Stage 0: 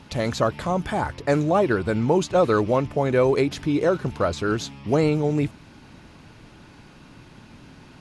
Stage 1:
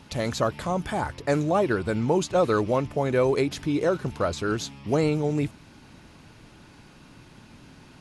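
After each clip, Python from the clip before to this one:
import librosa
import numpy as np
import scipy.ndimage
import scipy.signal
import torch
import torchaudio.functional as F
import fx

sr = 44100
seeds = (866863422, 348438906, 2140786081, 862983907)

y = fx.high_shelf(x, sr, hz=6600.0, db=6.5)
y = y * librosa.db_to_amplitude(-3.0)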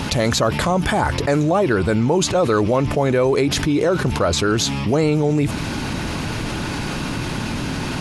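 y = fx.env_flatten(x, sr, amount_pct=70)
y = y * librosa.db_to_amplitude(3.0)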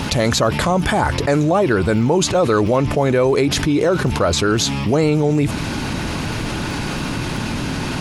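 y = fx.dmg_crackle(x, sr, seeds[0], per_s=27.0, level_db=-33.0)
y = y * librosa.db_to_amplitude(1.5)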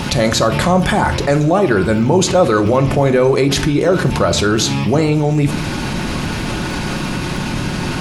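y = fx.room_shoebox(x, sr, seeds[1], volume_m3=800.0, walls='furnished', distance_m=0.97)
y = y * librosa.db_to_amplitude(1.5)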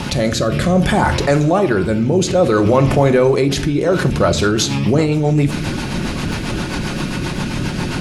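y = fx.rotary_switch(x, sr, hz=0.6, then_hz=7.5, switch_at_s=3.68)
y = y * librosa.db_to_amplitude(1.0)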